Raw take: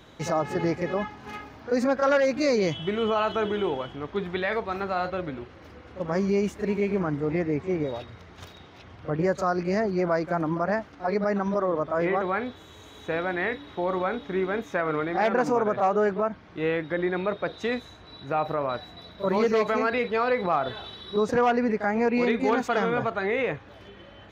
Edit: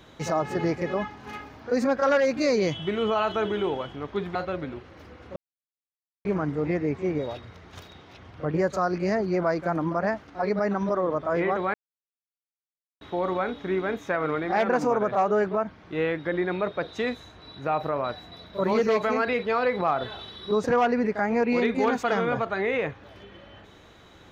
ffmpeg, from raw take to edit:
-filter_complex "[0:a]asplit=6[s0][s1][s2][s3][s4][s5];[s0]atrim=end=4.352[s6];[s1]atrim=start=4.998:end=6.01,asetpts=PTS-STARTPTS,afade=t=out:st=1.008:d=0.004:c=hsin[s7];[s2]atrim=start=6.01:end=6.9,asetpts=PTS-STARTPTS,volume=0[s8];[s3]atrim=start=6.9:end=12.39,asetpts=PTS-STARTPTS,afade=t=in:d=0.004:c=hsin,afade=t=out:st=5.486:d=0.004:c=hsin[s9];[s4]atrim=start=12.39:end=13.66,asetpts=PTS-STARTPTS,volume=0[s10];[s5]atrim=start=13.66,asetpts=PTS-STARTPTS,afade=t=in:d=0.004:c=hsin[s11];[s7][s8][s9][s10][s11]concat=n=5:v=0:a=1[s12];[s6][s12]acrossfade=d=0.004:c1=hsin:c2=hsin"

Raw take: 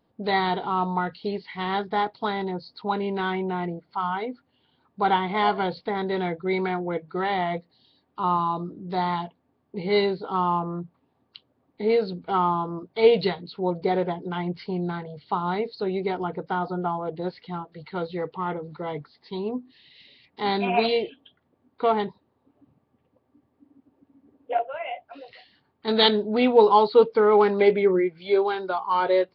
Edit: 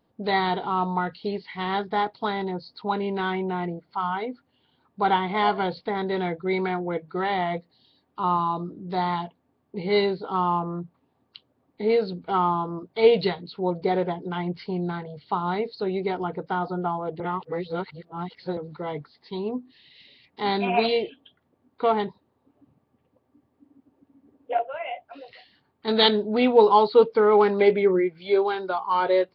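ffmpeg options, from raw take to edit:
-filter_complex "[0:a]asplit=3[s0][s1][s2];[s0]atrim=end=17.202[s3];[s1]atrim=start=17.198:end=18.572,asetpts=PTS-STARTPTS,areverse[s4];[s2]atrim=start=18.568[s5];[s3][s4]acrossfade=d=0.004:c1=hsin:c2=hsin[s6];[s6][s5]acrossfade=d=0.004:c1=hsin:c2=hsin"

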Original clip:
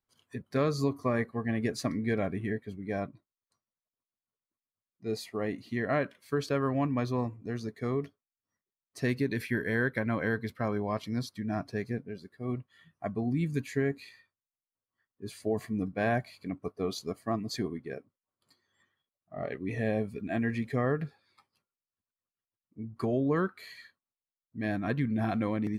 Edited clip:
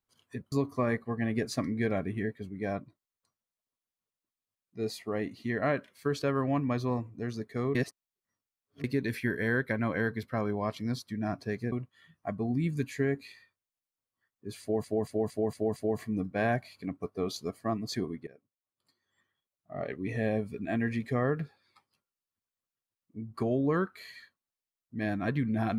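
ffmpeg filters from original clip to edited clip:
-filter_complex "[0:a]asplit=11[s0][s1][s2][s3][s4][s5][s6][s7][s8][s9][s10];[s0]atrim=end=0.522[s11];[s1]atrim=start=0.788:end=8.022[s12];[s2]atrim=start=8.018:end=9.112,asetpts=PTS-STARTPTS,areverse[s13];[s3]atrim=start=9.108:end=11.992[s14];[s4]atrim=start=12.488:end=15.612[s15];[s5]atrim=start=15.378:end=15.612[s16];[s6]atrim=start=15.378:end=15.612[s17];[s7]atrim=start=15.378:end=15.612[s18];[s8]atrim=start=15.378:end=15.612[s19];[s9]atrim=start=15.378:end=17.89,asetpts=PTS-STARTPTS,afade=t=out:st=2.508:d=0.004:c=hsin:silence=0.125893[s20];[s10]atrim=start=17.89,asetpts=PTS-STARTPTS,afade=t=in:d=1.54:silence=0.125893[s21];[s11][s12]acrossfade=d=0.004:c1=hsin:c2=hsin[s22];[s22][s13]acrossfade=d=0.004:c1=hsin:c2=hsin[s23];[s23][s14]acrossfade=d=0.004:c1=hsin:c2=hsin[s24];[s24][s15]acrossfade=d=0.004:c1=hsin:c2=hsin[s25];[s25][s16]acrossfade=d=0.004:c1=hsin:c2=hsin[s26];[s26][s17]acrossfade=d=0.004:c1=hsin:c2=hsin[s27];[s27][s18]acrossfade=d=0.004:c1=hsin:c2=hsin[s28];[s28][s19]acrossfade=d=0.004:c1=hsin:c2=hsin[s29];[s20][s21]concat=n=2:v=0:a=1[s30];[s29][s30]acrossfade=d=0.004:c1=hsin:c2=hsin"

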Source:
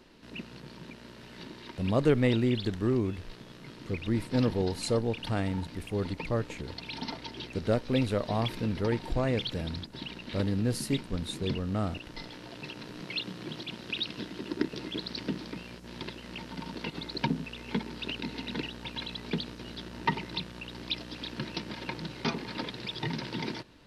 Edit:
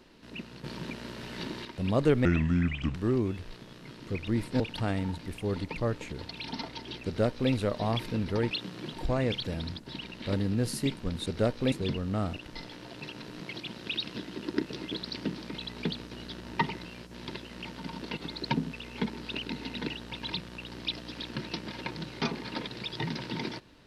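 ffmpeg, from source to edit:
-filter_complex "[0:a]asplit=14[s0][s1][s2][s3][s4][s5][s6][s7][s8][s9][s10][s11][s12][s13];[s0]atrim=end=0.642[s14];[s1]atrim=start=0.638:end=1.652,asetpts=PTS-STARTPTS,volume=2.37[s15];[s2]atrim=start=1.648:end=2.254[s16];[s3]atrim=start=2.25:end=2.74,asetpts=PTS-STARTPTS,asetrate=30870,aresample=44100,atrim=end_sample=30870,asetpts=PTS-STARTPTS[s17];[s4]atrim=start=2.736:end=4.392[s18];[s5]atrim=start=5.088:end=9.002[s19];[s6]atrim=start=13.138:end=13.562[s20];[s7]atrim=start=8.998:end=11.332[s21];[s8]atrim=start=7.538:end=8.002[s22];[s9]atrim=start=11.328:end=13.142[s23];[s10]atrim=start=13.558:end=15.582[s24];[s11]atrim=start=19.028:end=20.332[s25];[s12]atrim=start=15.578:end=19.032[s26];[s13]atrim=start=20.328[s27];[s14][s15]acrossfade=d=0.004:c1=hsin:c2=hsin[s28];[s28][s16]acrossfade=d=0.004:c1=hsin:c2=hsin[s29];[s29][s17]acrossfade=d=0.004:c1=hsin:c2=hsin[s30];[s30][s18]acrossfade=d=0.004:c1=hsin:c2=hsin[s31];[s31][s19]acrossfade=d=0.004:c1=hsin:c2=hsin[s32];[s32][s20]acrossfade=d=0.004:c1=hsin:c2=hsin[s33];[s33][s21]acrossfade=d=0.004:c1=hsin:c2=hsin[s34];[s34][s22]acrossfade=d=0.004:c1=hsin:c2=hsin[s35];[s35][s23]acrossfade=d=0.004:c1=hsin:c2=hsin[s36];[s36][s24]acrossfade=d=0.004:c1=hsin:c2=hsin[s37];[s37][s25]acrossfade=d=0.004:c1=hsin:c2=hsin[s38];[s38][s26]acrossfade=d=0.004:c1=hsin:c2=hsin[s39];[s39][s27]acrossfade=d=0.004:c1=hsin:c2=hsin"

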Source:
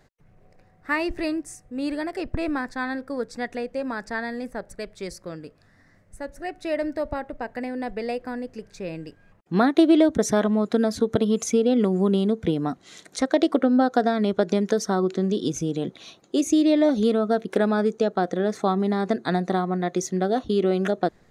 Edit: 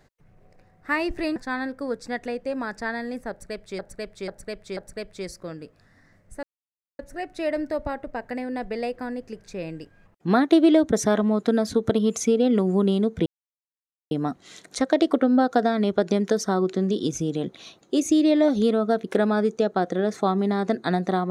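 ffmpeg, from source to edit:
-filter_complex "[0:a]asplit=7[s0][s1][s2][s3][s4][s5][s6];[s0]atrim=end=1.362[s7];[s1]atrim=start=2.648:end=5.082[s8];[s2]atrim=start=4.588:end=5.082[s9];[s3]atrim=start=4.588:end=5.082[s10];[s4]atrim=start=4.588:end=6.25,asetpts=PTS-STARTPTS,afade=t=out:st=1.658:d=0.004:c=hsin,apad=pad_dur=0.56[s11];[s5]atrim=start=6.25:end=12.52,asetpts=PTS-STARTPTS,afade=t=in:d=0.004:c=hsin,afade=t=out:st=6.266:d=0.004:c=hsin,apad=pad_dur=0.85[s12];[s6]atrim=start=12.52,asetpts=PTS-STARTPTS,afade=t=in:d=0.004:c=hsin[s13];[s7][s8]acrossfade=d=0.004:c1=hsin:c2=hsin[s14];[s14][s9]acrossfade=d=0.004:c1=hsin:c2=hsin[s15];[s15][s10]acrossfade=d=0.004:c1=hsin:c2=hsin[s16];[s11][s12][s13]concat=n=3:v=0:a=1[s17];[s16][s17]acrossfade=d=0.004:c1=hsin:c2=hsin"

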